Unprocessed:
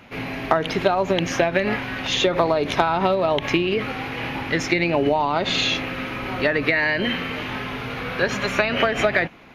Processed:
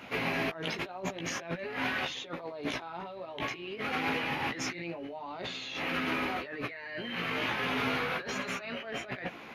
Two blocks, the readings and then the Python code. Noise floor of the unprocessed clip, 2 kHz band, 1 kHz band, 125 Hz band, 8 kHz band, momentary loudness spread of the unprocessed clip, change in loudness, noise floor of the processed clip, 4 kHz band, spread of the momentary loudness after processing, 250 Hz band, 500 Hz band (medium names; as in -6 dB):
-31 dBFS, -10.5 dB, -12.5 dB, -13.5 dB, -9.0 dB, 9 LU, -12.5 dB, -46 dBFS, -11.5 dB, 9 LU, -12.5 dB, -16.5 dB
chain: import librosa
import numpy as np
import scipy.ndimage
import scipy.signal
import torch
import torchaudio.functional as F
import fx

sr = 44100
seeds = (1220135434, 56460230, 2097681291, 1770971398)

y = fx.highpass(x, sr, hz=240.0, slope=6)
y = fx.over_compress(y, sr, threshold_db=-32.0, ratio=-1.0)
y = fx.chorus_voices(y, sr, voices=2, hz=0.49, base_ms=15, depth_ms=3.0, mix_pct=40)
y = y * 10.0 ** (-2.5 / 20.0)